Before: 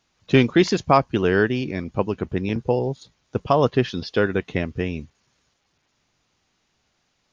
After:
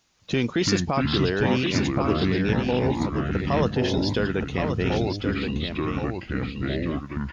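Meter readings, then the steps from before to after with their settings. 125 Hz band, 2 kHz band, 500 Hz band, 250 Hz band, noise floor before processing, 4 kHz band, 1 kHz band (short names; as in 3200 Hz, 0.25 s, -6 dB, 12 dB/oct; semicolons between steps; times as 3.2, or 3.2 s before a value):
+1.0 dB, -1.5 dB, -3.5 dB, 0.0 dB, -71 dBFS, +3.0 dB, -4.5 dB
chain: high shelf 5300 Hz +8.5 dB; limiter -14 dBFS, peak gain reduction 11.5 dB; echoes that change speed 0.227 s, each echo -5 st, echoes 2; echo 1.074 s -6 dB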